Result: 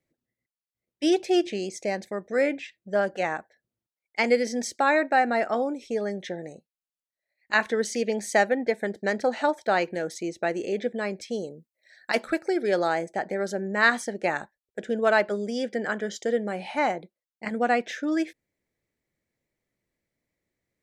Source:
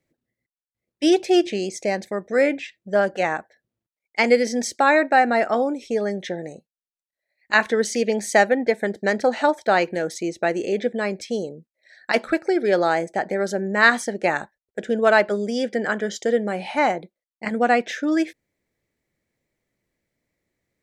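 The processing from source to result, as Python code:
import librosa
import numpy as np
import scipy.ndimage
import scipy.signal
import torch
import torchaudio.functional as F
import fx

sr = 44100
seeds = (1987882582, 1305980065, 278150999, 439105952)

y = fx.high_shelf(x, sr, hz=7400.0, db=8.5, at=(11.43, 12.88))
y = F.gain(torch.from_numpy(y), -5.0).numpy()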